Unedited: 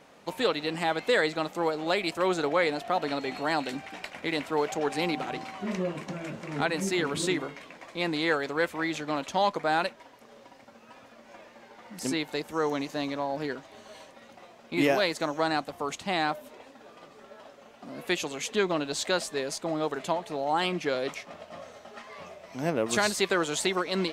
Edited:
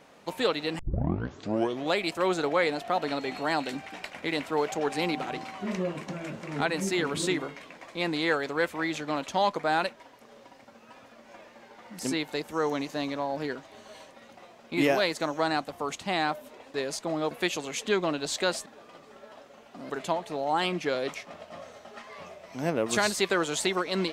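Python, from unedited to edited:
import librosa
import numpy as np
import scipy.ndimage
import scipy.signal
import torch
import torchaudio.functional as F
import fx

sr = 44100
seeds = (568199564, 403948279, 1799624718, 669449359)

y = fx.edit(x, sr, fx.tape_start(start_s=0.79, length_s=1.16),
    fx.swap(start_s=16.74, length_s=1.24, other_s=19.33, other_length_s=0.57), tone=tone)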